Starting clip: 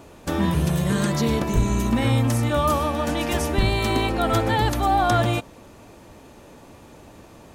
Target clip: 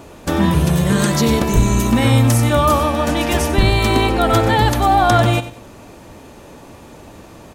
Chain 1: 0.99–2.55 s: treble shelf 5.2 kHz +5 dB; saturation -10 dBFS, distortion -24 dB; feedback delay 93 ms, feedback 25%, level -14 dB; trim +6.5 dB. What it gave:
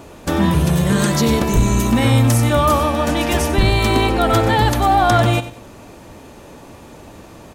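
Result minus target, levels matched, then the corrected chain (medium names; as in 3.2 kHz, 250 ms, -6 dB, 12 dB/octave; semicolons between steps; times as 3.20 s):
saturation: distortion +16 dB
0.99–2.55 s: treble shelf 5.2 kHz +5 dB; saturation -1 dBFS, distortion -41 dB; feedback delay 93 ms, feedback 25%, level -14 dB; trim +6.5 dB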